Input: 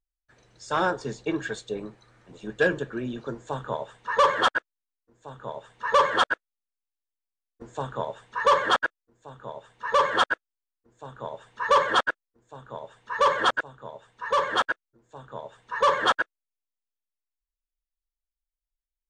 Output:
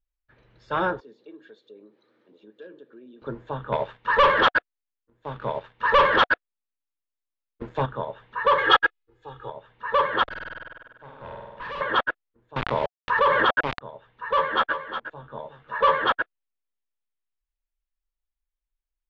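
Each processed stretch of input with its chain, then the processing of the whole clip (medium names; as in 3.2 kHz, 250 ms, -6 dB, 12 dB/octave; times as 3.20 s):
1.00–3.22 s: high-pass 250 Hz 24 dB/octave + high-order bell 1.4 kHz -9.5 dB 2.4 oct + compression 2:1, threshold -56 dBFS
3.72–7.86 s: waveshaping leveller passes 2 + treble shelf 5.3 kHz +5.5 dB
8.58–9.50 s: treble shelf 2.5 kHz +10.5 dB + comb 2.4 ms, depth 91%
10.23–11.81 s: companding laws mixed up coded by A + flutter echo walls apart 8.4 m, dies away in 1.4 s + valve stage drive 32 dB, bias 0.45
12.56–13.81 s: small samples zeroed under -42 dBFS + level flattener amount 70%
14.34–16.04 s: doubling 13 ms -4 dB + delay 362 ms -9.5 dB
whole clip: low-pass 3.4 kHz 24 dB/octave; bass shelf 85 Hz +5.5 dB; band-stop 720 Hz, Q 12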